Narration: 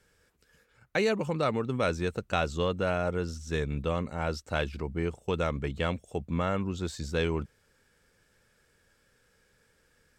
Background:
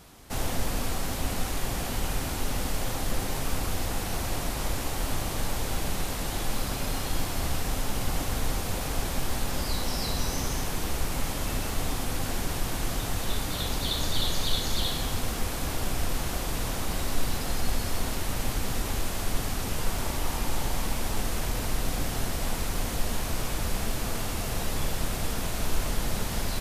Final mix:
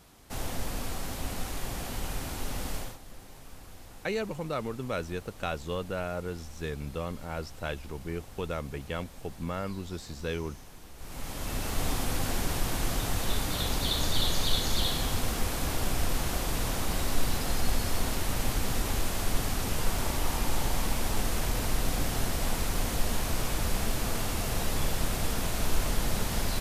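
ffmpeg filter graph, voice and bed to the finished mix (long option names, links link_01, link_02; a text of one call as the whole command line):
ffmpeg -i stem1.wav -i stem2.wav -filter_complex "[0:a]adelay=3100,volume=-5dB[link_01];[1:a]volume=14dB,afade=type=out:start_time=2.76:duration=0.22:silence=0.199526,afade=type=in:start_time=10.96:duration=0.92:silence=0.112202[link_02];[link_01][link_02]amix=inputs=2:normalize=0" out.wav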